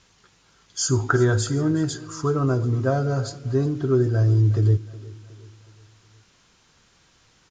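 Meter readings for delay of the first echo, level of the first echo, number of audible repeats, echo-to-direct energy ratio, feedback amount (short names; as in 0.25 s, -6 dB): 0.366 s, -19.0 dB, 3, -18.0 dB, 48%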